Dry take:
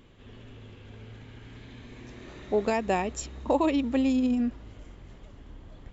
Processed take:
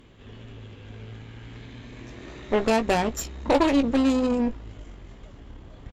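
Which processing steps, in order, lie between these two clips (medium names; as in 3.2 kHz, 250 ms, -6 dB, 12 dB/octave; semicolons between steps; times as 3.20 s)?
Chebyshev shaper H 8 -17 dB, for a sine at -13 dBFS; doubling 18 ms -9 dB; trim +3 dB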